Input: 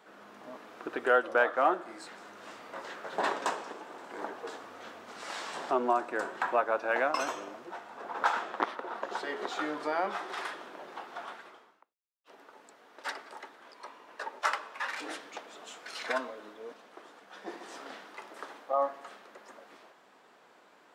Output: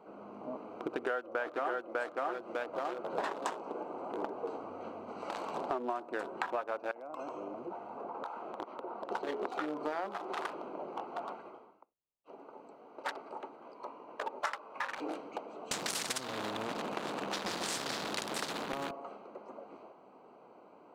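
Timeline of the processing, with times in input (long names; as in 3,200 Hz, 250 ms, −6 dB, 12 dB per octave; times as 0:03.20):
0:00.77–0:01.96: delay throw 600 ms, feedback 40%, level −1.5 dB
0:06.91–0:09.09: downward compressor 4 to 1, threshold −42 dBFS
0:15.71–0:18.91: every bin compressed towards the loudest bin 10 to 1
whole clip: adaptive Wiener filter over 25 samples; downward compressor 6 to 1, threshold −40 dBFS; level +7 dB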